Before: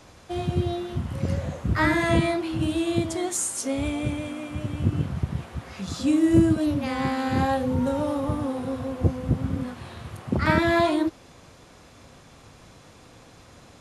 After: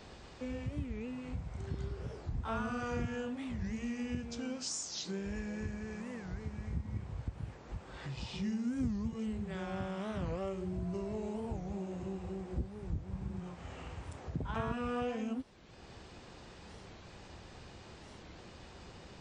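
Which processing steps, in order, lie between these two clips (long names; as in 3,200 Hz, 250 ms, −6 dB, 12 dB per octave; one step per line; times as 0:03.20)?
downward compressor 2 to 1, threshold −43 dBFS, peak gain reduction 16.5 dB
change of speed 0.719×
wow of a warped record 45 rpm, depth 250 cents
level −2 dB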